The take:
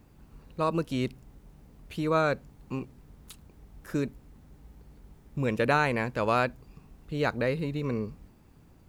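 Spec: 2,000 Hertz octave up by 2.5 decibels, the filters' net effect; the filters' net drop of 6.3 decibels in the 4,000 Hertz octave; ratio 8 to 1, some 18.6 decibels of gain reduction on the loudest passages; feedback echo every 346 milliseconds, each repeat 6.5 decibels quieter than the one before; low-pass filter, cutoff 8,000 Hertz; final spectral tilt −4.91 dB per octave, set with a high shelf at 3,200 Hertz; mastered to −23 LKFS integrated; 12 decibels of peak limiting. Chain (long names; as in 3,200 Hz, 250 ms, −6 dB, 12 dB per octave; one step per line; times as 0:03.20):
low-pass filter 8,000 Hz
parametric band 2,000 Hz +7 dB
high-shelf EQ 3,200 Hz −7.5 dB
parametric band 4,000 Hz −5.5 dB
downward compressor 8 to 1, threshold −39 dBFS
brickwall limiter −40.5 dBFS
repeating echo 346 ms, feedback 47%, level −6.5 dB
level +28 dB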